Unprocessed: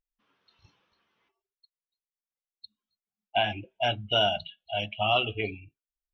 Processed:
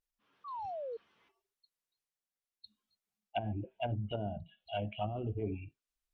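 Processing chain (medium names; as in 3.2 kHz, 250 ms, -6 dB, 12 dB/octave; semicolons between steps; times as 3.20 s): painted sound fall, 0.44–0.97 s, 440–1200 Hz -39 dBFS; transient shaper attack -7 dB, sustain +4 dB; low-pass that closes with the level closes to 300 Hz, closed at -26 dBFS; trim -1 dB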